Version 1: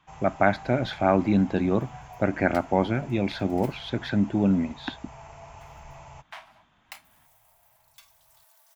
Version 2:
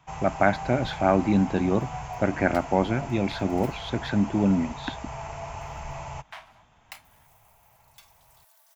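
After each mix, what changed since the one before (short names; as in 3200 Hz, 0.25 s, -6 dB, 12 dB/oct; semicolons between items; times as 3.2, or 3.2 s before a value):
first sound +9.0 dB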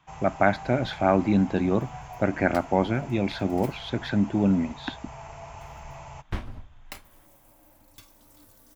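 first sound -5.5 dB; second sound: remove rippled Chebyshev high-pass 630 Hz, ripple 3 dB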